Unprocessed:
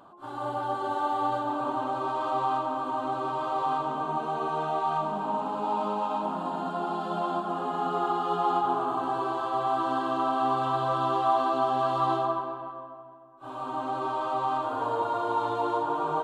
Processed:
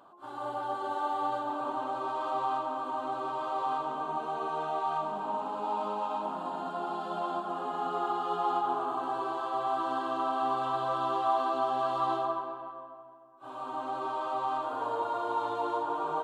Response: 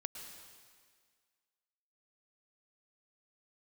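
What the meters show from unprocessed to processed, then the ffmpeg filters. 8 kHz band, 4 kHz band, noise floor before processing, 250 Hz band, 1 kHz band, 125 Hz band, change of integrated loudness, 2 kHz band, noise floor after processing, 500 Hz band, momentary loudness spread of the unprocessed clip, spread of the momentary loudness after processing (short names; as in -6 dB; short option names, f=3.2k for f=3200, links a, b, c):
n/a, -3.5 dB, -42 dBFS, -6.5 dB, -3.5 dB, -10.5 dB, -4.0 dB, -3.5 dB, -46 dBFS, -4.0 dB, 6 LU, 6 LU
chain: -af "bass=f=250:g=-8,treble=f=4k:g=0,volume=-3.5dB"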